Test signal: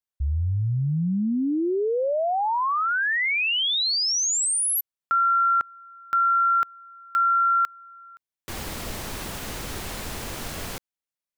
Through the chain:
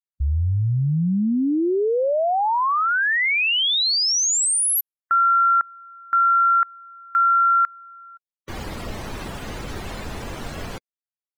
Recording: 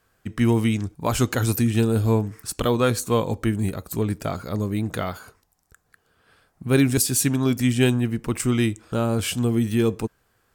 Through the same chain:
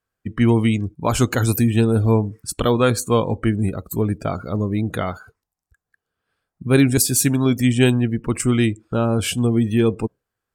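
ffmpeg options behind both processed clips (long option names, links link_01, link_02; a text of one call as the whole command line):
ffmpeg -i in.wav -af "afftdn=noise_reduction=20:noise_floor=-39,volume=3.5dB" out.wav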